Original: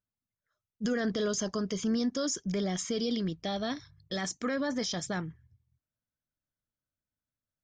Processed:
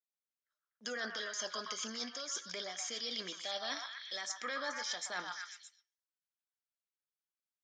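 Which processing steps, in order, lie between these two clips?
noise gate −57 dBFS, range −15 dB
high-pass filter 730 Hz 12 dB per octave
high-shelf EQ 2,700 Hz +10.5 dB
reversed playback
downward compressor, threshold −38 dBFS, peak gain reduction 15.5 dB
reversed playback
high-frequency loss of the air 56 metres
echo through a band-pass that steps 123 ms, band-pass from 1,100 Hz, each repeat 0.7 octaves, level −1 dB
on a send at −14.5 dB: convolution reverb RT60 0.30 s, pre-delay 3 ms
on the sum: level +2 dB

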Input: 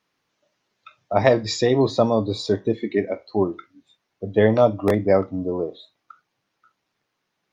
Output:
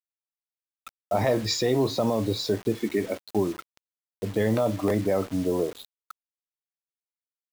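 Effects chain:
0:02.55–0:04.60: dynamic equaliser 700 Hz, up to −5 dB, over −33 dBFS, Q 1.1
brickwall limiter −14.5 dBFS, peak gain reduction 11 dB
bit reduction 7 bits

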